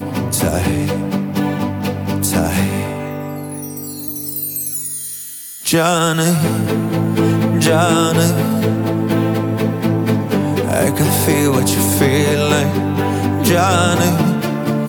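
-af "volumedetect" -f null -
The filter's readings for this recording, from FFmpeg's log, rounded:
mean_volume: -16.0 dB
max_volume: -1.5 dB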